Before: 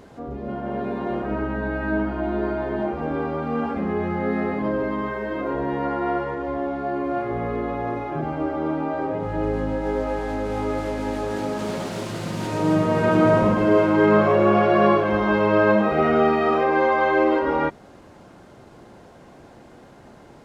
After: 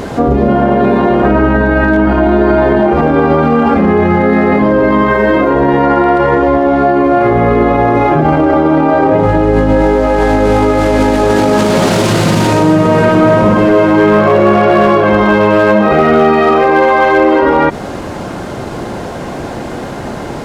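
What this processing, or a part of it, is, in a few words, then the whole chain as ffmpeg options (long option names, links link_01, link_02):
loud club master: -af "acompressor=threshold=-20dB:ratio=2.5,asoftclip=type=hard:threshold=-16dB,alimiter=level_in=26dB:limit=-1dB:release=50:level=0:latency=1,volume=-1dB"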